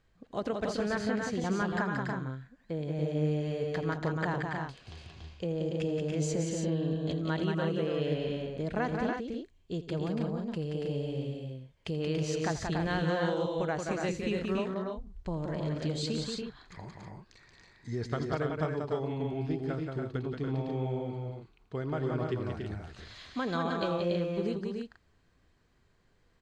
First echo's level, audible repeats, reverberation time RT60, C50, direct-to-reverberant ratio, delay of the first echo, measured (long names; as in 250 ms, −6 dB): −16.0 dB, 4, no reverb audible, no reverb audible, no reverb audible, 83 ms